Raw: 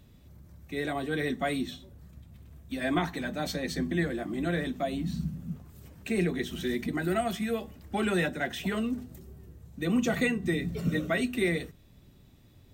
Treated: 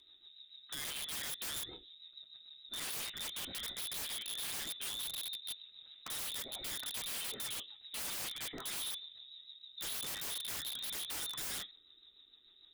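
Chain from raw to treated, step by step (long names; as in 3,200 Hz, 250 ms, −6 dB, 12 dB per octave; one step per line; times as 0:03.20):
voice inversion scrambler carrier 3,800 Hz
rotating-speaker cabinet horn 6.7 Hz
wrap-around overflow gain 31 dB
level −4.5 dB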